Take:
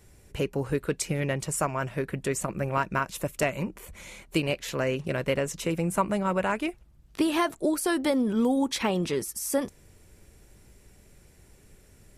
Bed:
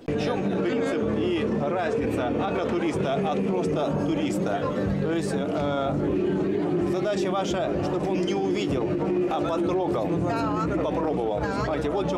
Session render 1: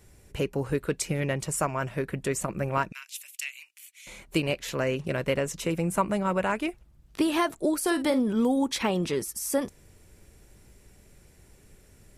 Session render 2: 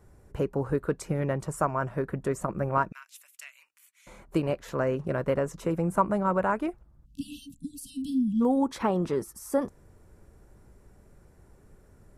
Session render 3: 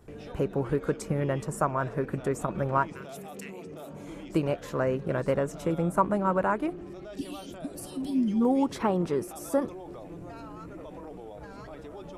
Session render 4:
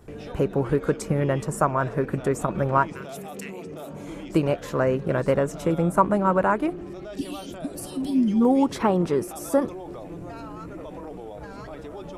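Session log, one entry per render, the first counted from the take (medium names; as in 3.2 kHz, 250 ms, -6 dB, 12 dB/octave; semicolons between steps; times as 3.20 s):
2.92–4.07 s: Chebyshev high-pass 2.5 kHz, order 3; 7.78–8.20 s: doubling 49 ms -11.5 dB
7.05–8.41 s: spectral selection erased 300–2600 Hz; resonant high shelf 1.8 kHz -10.5 dB, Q 1.5
add bed -17.5 dB
trim +5 dB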